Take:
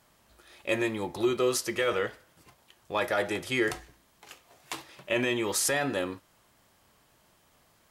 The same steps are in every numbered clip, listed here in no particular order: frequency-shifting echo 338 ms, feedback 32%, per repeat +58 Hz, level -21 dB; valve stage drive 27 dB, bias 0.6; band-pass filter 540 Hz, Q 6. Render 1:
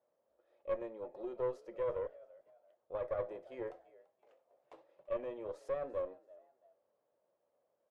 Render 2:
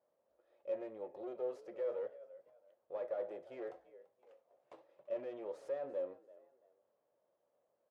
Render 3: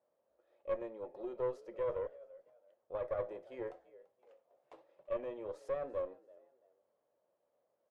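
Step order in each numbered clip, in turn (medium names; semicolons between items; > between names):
band-pass filter > frequency-shifting echo > valve stage; frequency-shifting echo > valve stage > band-pass filter; frequency-shifting echo > band-pass filter > valve stage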